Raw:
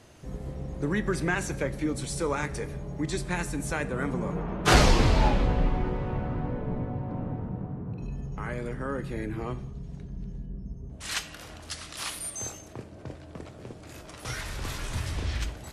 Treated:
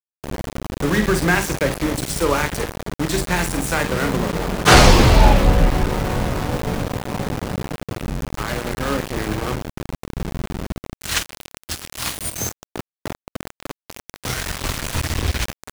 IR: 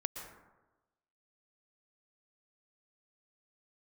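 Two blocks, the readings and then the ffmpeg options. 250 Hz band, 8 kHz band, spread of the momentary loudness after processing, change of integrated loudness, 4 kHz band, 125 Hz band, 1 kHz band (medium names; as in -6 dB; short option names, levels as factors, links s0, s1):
+8.5 dB, +10.5 dB, 19 LU, +9.5 dB, +11.0 dB, +8.5 dB, +10.5 dB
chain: -filter_complex "[0:a]bandreject=f=50:t=h:w=6,bandreject=f=100:t=h:w=6,bandreject=f=150:t=h:w=6,bandreject=f=200:t=h:w=6,bandreject=f=250:t=h:w=6,bandreject=f=300:t=h:w=6,bandreject=f=350:t=h:w=6,bandreject=f=400:t=h:w=6,bandreject=f=450:t=h:w=6,acrossover=split=350|1100|2300[s0][s1][s2][s3];[s0]acompressor=mode=upward:threshold=0.0282:ratio=2.5[s4];[s4][s1][s2][s3]amix=inputs=4:normalize=0,asplit=2[s5][s6];[s6]adelay=47,volume=0.376[s7];[s5][s7]amix=inputs=2:normalize=0,apsyclip=3.76,aeval=exprs='val(0)*gte(abs(val(0)),0.112)':c=same,volume=0.841"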